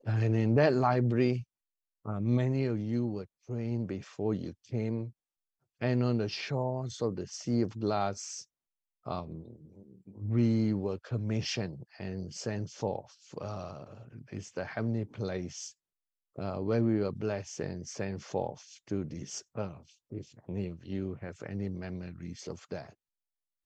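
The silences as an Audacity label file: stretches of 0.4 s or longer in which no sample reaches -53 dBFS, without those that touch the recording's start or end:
1.440000	2.050000	silence
5.110000	5.810000	silence
8.440000	9.050000	silence
15.720000	16.360000	silence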